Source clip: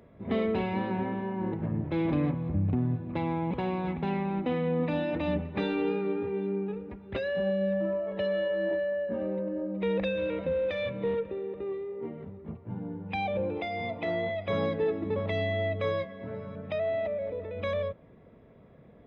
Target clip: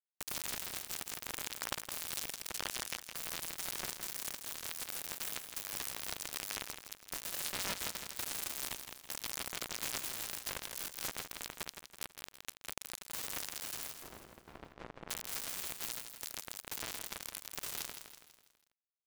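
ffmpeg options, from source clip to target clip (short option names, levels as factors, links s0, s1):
-filter_complex "[0:a]asettb=1/sr,asplit=3[s0][s1][s2];[s0]atrim=end=4.354[s3];[s1]atrim=start=4.35:end=5.23,asetpts=PTS-STARTPTS,afade=t=in:d=0.004:c=qsin,afade=t=out:st=0.876:d=0.004:c=qsin,highpass=f=290:w=0.5412,highpass=f=290:w=1.3066[s4];[s2]atrim=start=5.226[s5];[s3][s4]acrossfade=d=0.004:c1=hsin:c2=qsin[s6];[s6][s5]acrossfade=d=0.004:c1=qsin:c2=hsin,acompressor=threshold=0.01:ratio=6,aexciter=amount=1.5:drive=5.1:freq=3500,aeval=exprs='(mod(59.6*val(0)+1,2)-1)/59.6':c=same,acrusher=bits=5:mix=0:aa=0.000001,asettb=1/sr,asplit=3[s7][s8][s9];[s7]atrim=end=13.994[s10];[s8]atrim=start=13.99:end=15.1,asetpts=PTS-STARTPTS,afade=t=in:d=0.004:c=qsin,afade=t=out:st=1.106:d=0.004:c=qsin,adynamicsmooth=sensitivity=1:basefreq=1100[s11];[s9]atrim=start=15.096[s12];[s10][s11]acrossfade=d=0.004:c1=hsin:c2=qsin[s13];[s13][s12]acrossfade=d=0.004:c1=qsin:c2=hsin,aecho=1:1:164|328|492|656|820:0.398|0.183|0.0842|0.0388|0.0178,volume=1.78"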